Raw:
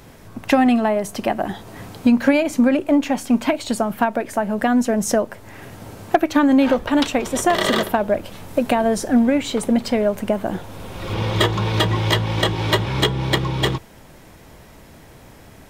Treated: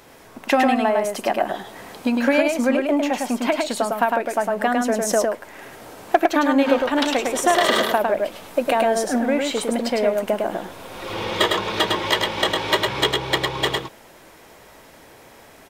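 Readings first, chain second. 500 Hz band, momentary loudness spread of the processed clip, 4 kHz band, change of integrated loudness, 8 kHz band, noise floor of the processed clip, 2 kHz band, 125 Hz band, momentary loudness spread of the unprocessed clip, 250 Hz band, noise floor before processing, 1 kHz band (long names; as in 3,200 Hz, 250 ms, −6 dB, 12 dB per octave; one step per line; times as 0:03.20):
+0.5 dB, 10 LU, +1.5 dB, −1.5 dB, +0.5 dB, −47 dBFS, +1.5 dB, −13.5 dB, 13 LU, −5.0 dB, −45 dBFS, +1.5 dB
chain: bass and treble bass −14 dB, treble −1 dB
single-tap delay 105 ms −3.5 dB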